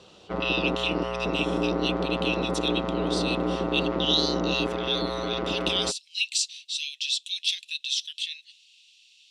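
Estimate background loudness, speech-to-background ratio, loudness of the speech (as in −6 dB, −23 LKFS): −28.5 LKFS, −0.5 dB, −29.0 LKFS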